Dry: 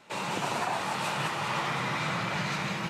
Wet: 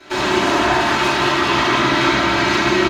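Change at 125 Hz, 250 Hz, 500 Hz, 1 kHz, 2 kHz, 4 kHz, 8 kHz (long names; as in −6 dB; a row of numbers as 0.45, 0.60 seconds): +9.0, +18.0, +17.5, +13.5, +15.0, +15.5, +11.0 decibels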